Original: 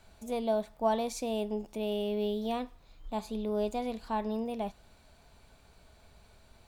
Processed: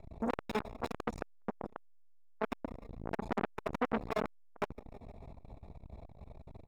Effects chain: wrapped overs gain 29.5 dB; running mean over 29 samples; feedback echo 0.156 s, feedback 56%, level -20 dB; core saturation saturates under 1200 Hz; gain +14.5 dB

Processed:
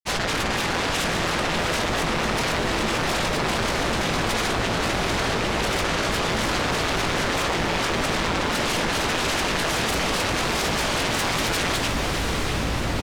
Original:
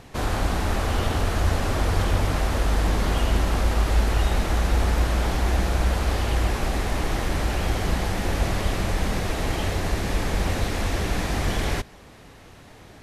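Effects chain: LPF 5600 Hz 12 dB/oct; low shelf 83 Hz +10.5 dB; limiter -18.5 dBFS, peak gain reduction 14.5 dB; sine folder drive 18 dB, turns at -18.5 dBFS; AM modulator 230 Hz, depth 70%; grains, pitch spread up and down by 7 st; doubler 18 ms -11 dB; diffused feedback echo 0.715 s, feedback 60%, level -5.5 dB; fast leveller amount 50%

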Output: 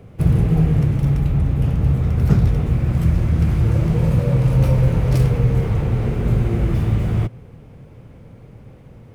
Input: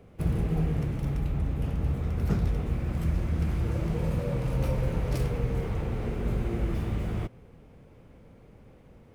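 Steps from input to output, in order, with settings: bell 120 Hz +8.5 dB 0.85 oct; gain +7.5 dB

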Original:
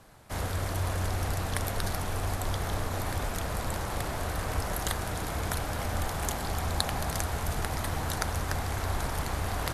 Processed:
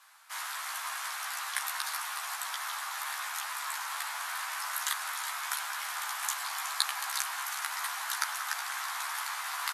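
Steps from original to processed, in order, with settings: steep high-pass 970 Hz 36 dB/oct; doubler 14 ms -2.5 dB; on a send: echo with dull and thin repeats by turns 0.185 s, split 1800 Hz, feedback 59%, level -6 dB

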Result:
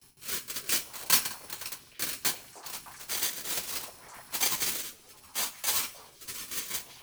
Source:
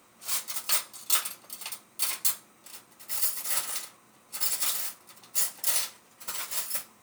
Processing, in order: FFT order left unsorted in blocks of 64 samples; in parallel at +1 dB: compressor 6:1, threshold -37 dBFS, peak gain reduction 17.5 dB; on the sum: gate with hold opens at -41 dBFS; on a send: delay with a stepping band-pass 0.306 s, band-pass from 620 Hz, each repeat 0.7 oct, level -10 dB; on the sum: rotary speaker horn 0.65 Hz; frequency shift -86 Hz; resonator 79 Hz, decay 1.2 s, harmonics all, mix 40%; 4.82–6.48 ensemble effect; gain +4 dB

